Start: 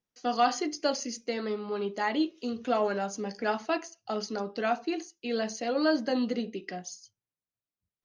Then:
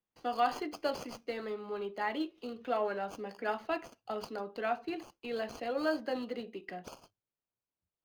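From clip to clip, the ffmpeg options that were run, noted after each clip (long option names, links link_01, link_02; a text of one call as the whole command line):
ffmpeg -i in.wav -filter_complex "[0:a]acrossover=split=300|4300[link_01][link_02][link_03];[link_01]acompressor=threshold=-46dB:ratio=6[link_04];[link_03]acrusher=samples=23:mix=1:aa=0.000001[link_05];[link_04][link_02][link_05]amix=inputs=3:normalize=0,volume=-4.5dB" out.wav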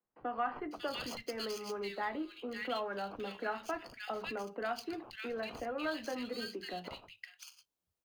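ffmpeg -i in.wav -filter_complex "[0:a]acrossover=split=200|1200[link_01][link_02][link_03];[link_02]acompressor=threshold=-42dB:ratio=6[link_04];[link_01][link_04][link_03]amix=inputs=3:normalize=0,acrossover=split=170|1900[link_05][link_06][link_07];[link_05]adelay=40[link_08];[link_07]adelay=550[link_09];[link_08][link_06][link_09]amix=inputs=3:normalize=0,volume=3.5dB" out.wav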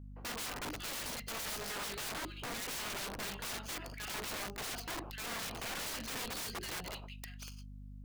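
ffmpeg -i in.wav -af "aeval=exprs='val(0)+0.00316*(sin(2*PI*50*n/s)+sin(2*PI*2*50*n/s)/2+sin(2*PI*3*50*n/s)/3+sin(2*PI*4*50*n/s)/4+sin(2*PI*5*50*n/s)/5)':channel_layout=same,aeval=exprs='(mod(79.4*val(0)+1,2)-1)/79.4':channel_layout=same,volume=2.5dB" out.wav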